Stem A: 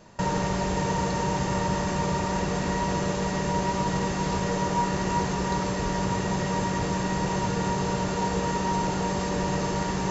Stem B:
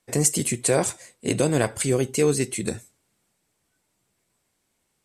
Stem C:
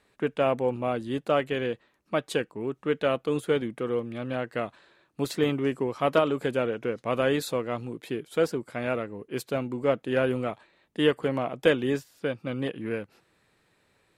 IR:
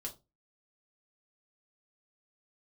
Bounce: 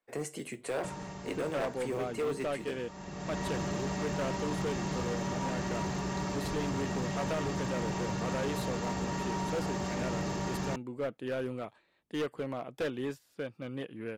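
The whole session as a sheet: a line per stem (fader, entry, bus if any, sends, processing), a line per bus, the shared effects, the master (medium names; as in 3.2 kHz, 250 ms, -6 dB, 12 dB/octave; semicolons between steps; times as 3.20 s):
-6.0 dB, 0.65 s, send -20 dB, comb of notches 490 Hz; auto duck -18 dB, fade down 1.90 s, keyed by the second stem
-11.0 dB, 0.00 s, send -4 dB, three-band isolator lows -13 dB, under 310 Hz, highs -16 dB, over 2.9 kHz; short-mantissa float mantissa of 4-bit
-8.5 dB, 1.15 s, no send, none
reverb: on, RT60 0.25 s, pre-delay 4 ms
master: hard clipper -28.5 dBFS, distortion -12 dB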